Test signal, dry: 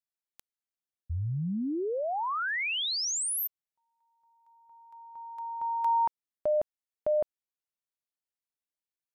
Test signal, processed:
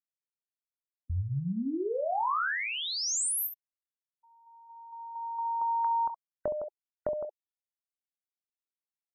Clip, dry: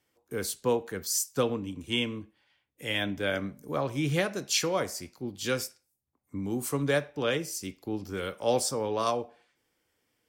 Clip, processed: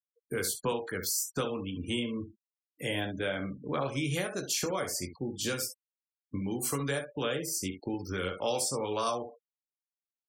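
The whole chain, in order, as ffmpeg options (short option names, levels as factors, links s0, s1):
-filter_complex "[0:a]acrossover=split=1200|7500[s0][s1][s2];[s0]acompressor=threshold=0.0126:ratio=5[s3];[s1]acompressor=threshold=0.00794:ratio=8[s4];[s2]acompressor=threshold=0.00794:ratio=2.5[s5];[s3][s4][s5]amix=inputs=3:normalize=0,aecho=1:1:22|67:0.447|0.355,afftfilt=real='re*gte(hypot(re,im),0.00398)':imag='im*gte(hypot(re,im),0.00398)':win_size=1024:overlap=0.75,volume=1.88"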